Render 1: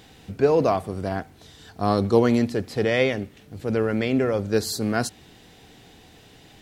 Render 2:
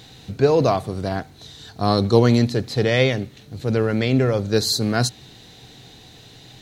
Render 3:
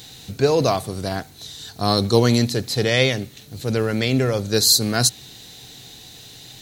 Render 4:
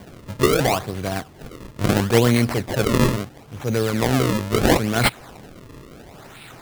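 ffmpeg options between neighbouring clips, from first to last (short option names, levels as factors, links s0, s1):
-af "equalizer=f=125:t=o:w=0.33:g=10,equalizer=f=4000:t=o:w=0.33:g=11,equalizer=f=6300:t=o:w=0.33:g=5,volume=1.26"
-af "crystalizer=i=3:c=0,volume=0.841"
-af "acrusher=samples=33:mix=1:aa=0.000001:lfo=1:lforange=52.8:lforate=0.74"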